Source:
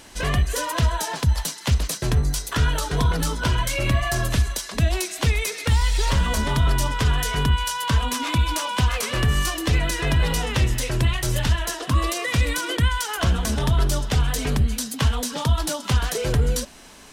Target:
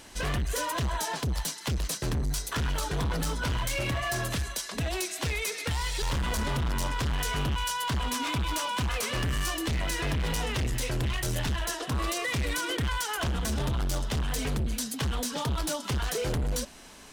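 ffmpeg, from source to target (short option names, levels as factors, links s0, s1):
-filter_complex "[0:a]asettb=1/sr,asplit=3[s0][s1][s2];[s0]atrim=end=3.824[s3];[s1]atrim=start=3.82:end=6.02,asetpts=PTS-STARTPTS,afade=t=in:d=0.004:c=qsin,afade=t=out:st=2.196:d=0.004:c=qsin,highpass=f=130:p=1[s4];[s2]atrim=start=6.016[s5];[s3][s4]acrossfade=d=0.004:c1=hsin:c2=qsin[s6];[s6][s5]acrossfade=d=0.004:c1=qsin:c2=hsin,asoftclip=type=hard:threshold=0.075,volume=0.668"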